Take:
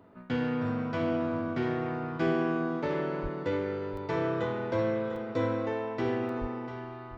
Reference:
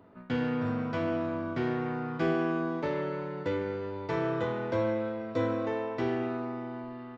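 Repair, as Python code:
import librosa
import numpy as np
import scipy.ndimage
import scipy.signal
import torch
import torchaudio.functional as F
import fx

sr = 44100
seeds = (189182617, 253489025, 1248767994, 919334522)

y = fx.highpass(x, sr, hz=140.0, slope=24, at=(3.22, 3.34), fade=0.02)
y = fx.highpass(y, sr, hz=140.0, slope=24, at=(6.4, 6.52), fade=0.02)
y = fx.fix_interpolate(y, sr, at_s=(3.97, 5.16, 6.29), length_ms=2.7)
y = fx.fix_echo_inverse(y, sr, delay_ms=696, level_db=-11.0)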